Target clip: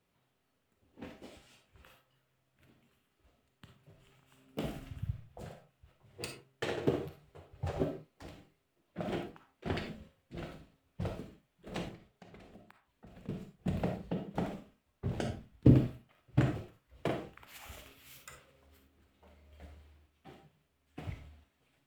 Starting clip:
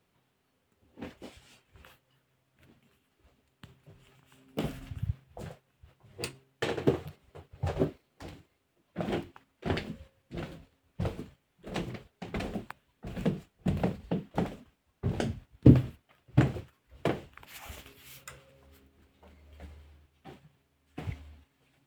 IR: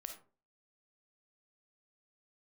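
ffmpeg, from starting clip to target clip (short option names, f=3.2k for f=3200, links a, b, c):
-filter_complex "[0:a]asettb=1/sr,asplit=3[a][b][c];[a]atrim=end=11.884[d];[b]atrim=start=11.88:end=13.29,asetpts=PTS-STARTPTS,afade=t=in:d=0.004:c=qsin,afade=t=out:st=1.406:d=0.004:c=qsin,acompressor=threshold=-47dB:ratio=16[e];[c]atrim=start=13.286[f];[d][e]acrossfade=d=0.004:c1=hsin:c2=qsin[g];[g][f]acrossfade=d=0.004:c1=qsin:c2=hsin[h];[1:a]atrim=start_sample=2205,afade=t=out:st=0.23:d=0.01,atrim=end_sample=10584[i];[h][i]afir=irnorm=-1:irlink=0"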